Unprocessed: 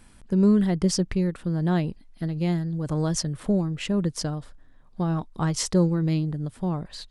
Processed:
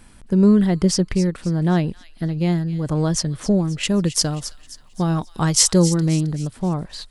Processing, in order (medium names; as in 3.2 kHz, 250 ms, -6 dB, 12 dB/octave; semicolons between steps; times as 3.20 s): 3.83–5.84 s: treble shelf 3.7 kHz +11.5 dB; feedback echo behind a high-pass 266 ms, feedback 41%, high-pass 2.5 kHz, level -12 dB; trim +5 dB